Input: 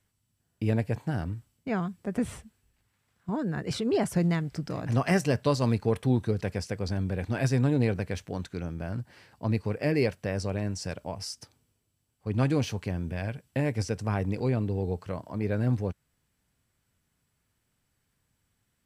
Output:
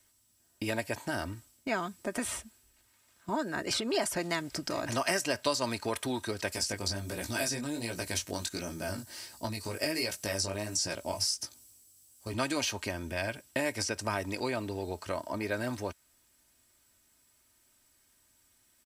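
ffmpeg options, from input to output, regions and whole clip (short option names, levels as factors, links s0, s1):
-filter_complex "[0:a]asettb=1/sr,asplit=3[s0][s1][s2];[s0]atrim=end=6.524[s3];[s1]atrim=start=6.52:end=12.34,asetpts=PTS-STARTPTS,afade=t=in:d=0.004:c=qsin,afade=t=out:st=5.816:d=0.004:c=qsin,bass=f=250:g=4,treble=f=4000:g=13,acompressor=threshold=0.0631:ratio=6:attack=3.2:release=140:knee=1:detection=peak,flanger=delay=16.5:depth=4.8:speed=1.4[s4];[s2]atrim=start=12.336[s5];[s3][s4]acrossfade=d=0.004:c1=hsin:c2=qsin[s6];[s6][s5]acrossfade=d=0.004:c1=qsin:c2=hsin,bass=f=250:g=-8,treble=f=4000:g=8,aecho=1:1:3.2:0.55,acrossover=split=660|3500[s7][s8][s9];[s7]acompressor=threshold=0.01:ratio=4[s10];[s8]acompressor=threshold=0.0178:ratio=4[s11];[s9]acompressor=threshold=0.0112:ratio=4[s12];[s10][s11][s12]amix=inputs=3:normalize=0,volume=1.68"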